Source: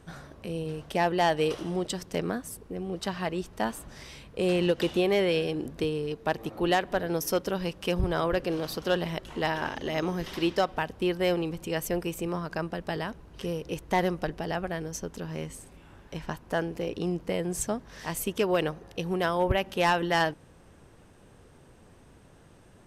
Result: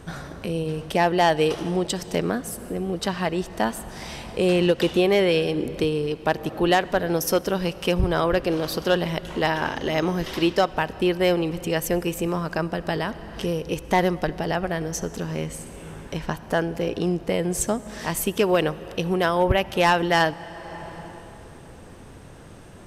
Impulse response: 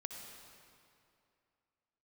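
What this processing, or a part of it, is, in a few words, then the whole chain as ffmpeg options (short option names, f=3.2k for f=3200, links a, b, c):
ducked reverb: -filter_complex "[0:a]asplit=3[a][b][c];[1:a]atrim=start_sample=2205[d];[b][d]afir=irnorm=-1:irlink=0[e];[c]apad=whole_len=1008239[f];[e][f]sidechaincompress=threshold=-41dB:ratio=5:attack=22:release=497,volume=3.5dB[g];[a][g]amix=inputs=2:normalize=0,volume=4.5dB"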